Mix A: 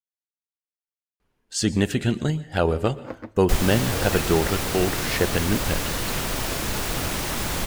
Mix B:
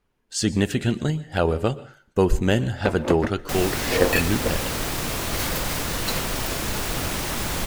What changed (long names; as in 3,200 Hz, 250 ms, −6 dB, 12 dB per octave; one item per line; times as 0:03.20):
speech: entry −1.20 s
first sound +10.5 dB